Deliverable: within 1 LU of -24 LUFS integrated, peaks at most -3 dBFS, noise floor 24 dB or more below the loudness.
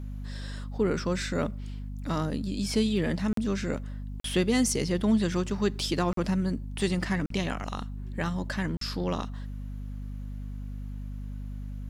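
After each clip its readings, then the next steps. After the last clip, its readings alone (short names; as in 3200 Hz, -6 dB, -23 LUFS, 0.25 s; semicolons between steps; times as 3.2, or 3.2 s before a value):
dropouts 5; longest dropout 43 ms; hum 50 Hz; harmonics up to 250 Hz; hum level -34 dBFS; loudness -30.5 LUFS; peak -14.0 dBFS; loudness target -24.0 LUFS
-> interpolate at 3.33/4.2/6.13/7.26/8.77, 43 ms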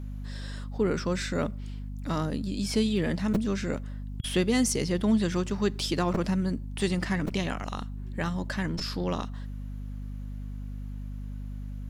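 dropouts 0; hum 50 Hz; harmonics up to 250 Hz; hum level -34 dBFS
-> notches 50/100/150/200/250 Hz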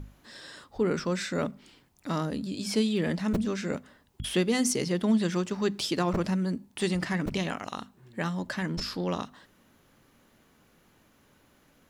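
hum none; loudness -29.5 LUFS; peak -14.0 dBFS; loudness target -24.0 LUFS
-> gain +5.5 dB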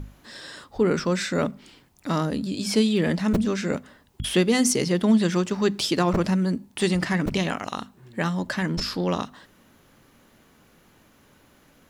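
loudness -24.0 LUFS; peak -8.5 dBFS; noise floor -58 dBFS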